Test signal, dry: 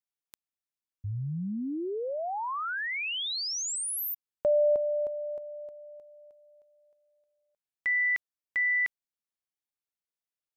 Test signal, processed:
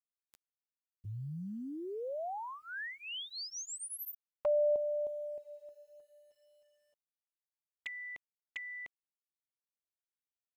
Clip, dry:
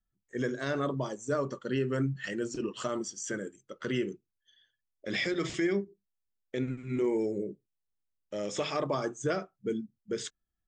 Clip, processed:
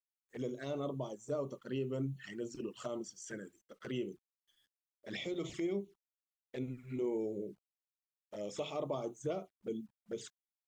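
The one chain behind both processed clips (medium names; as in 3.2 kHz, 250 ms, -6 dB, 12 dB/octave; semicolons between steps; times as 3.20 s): bit crusher 11-bit; dynamic bell 700 Hz, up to +4 dB, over -41 dBFS, Q 1.2; touch-sensitive flanger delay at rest 11.7 ms, full sweep at -28.5 dBFS; trim -7.5 dB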